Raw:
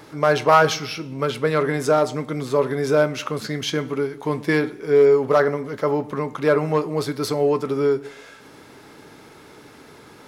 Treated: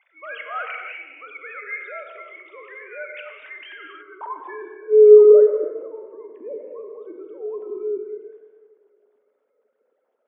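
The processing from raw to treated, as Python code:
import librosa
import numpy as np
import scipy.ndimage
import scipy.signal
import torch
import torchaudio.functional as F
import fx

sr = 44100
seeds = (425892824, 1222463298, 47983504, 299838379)

y = fx.sine_speech(x, sr)
y = fx.over_compress(y, sr, threshold_db=-36.0, ratio=-1.0, at=(3.71, 4.27), fade=0.02)
y = fx.spec_repair(y, sr, seeds[0], start_s=6.36, length_s=0.37, low_hz=780.0, high_hz=1700.0, source='before')
y = fx.transient(y, sr, attack_db=-2, sustain_db=6)
y = fx.filter_sweep_bandpass(y, sr, from_hz=2200.0, to_hz=240.0, start_s=3.51, end_s=5.82, q=4.5)
y = fx.echo_tape(y, sr, ms=101, feedback_pct=79, wet_db=-12.0, lp_hz=1300.0, drive_db=8.0, wow_cents=32)
y = fx.rev_gated(y, sr, seeds[1], gate_ms=310, shape='flat', drr_db=4.0)
y = y * librosa.db_to_amplitude(4.5)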